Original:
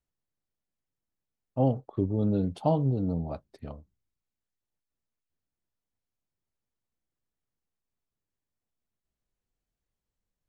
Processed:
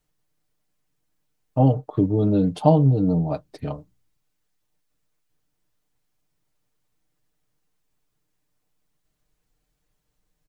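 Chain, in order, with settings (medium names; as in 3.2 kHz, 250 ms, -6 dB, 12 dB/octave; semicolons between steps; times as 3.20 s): comb 6.6 ms, depth 69%; in parallel at +1.5 dB: compression, threshold -35 dBFS, peak gain reduction 18 dB; on the sum: trim +4 dB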